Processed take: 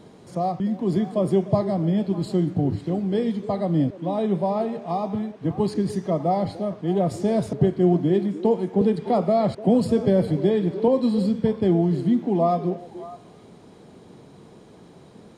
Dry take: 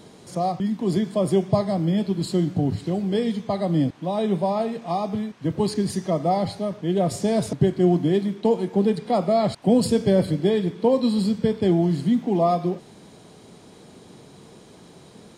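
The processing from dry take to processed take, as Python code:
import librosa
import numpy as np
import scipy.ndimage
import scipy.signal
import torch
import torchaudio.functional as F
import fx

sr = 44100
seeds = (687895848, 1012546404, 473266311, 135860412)

y = fx.high_shelf(x, sr, hz=2500.0, db=-9.5)
y = fx.echo_stepped(y, sr, ms=299, hz=380.0, octaves=1.4, feedback_pct=70, wet_db=-11)
y = fx.band_squash(y, sr, depth_pct=40, at=(8.81, 10.88))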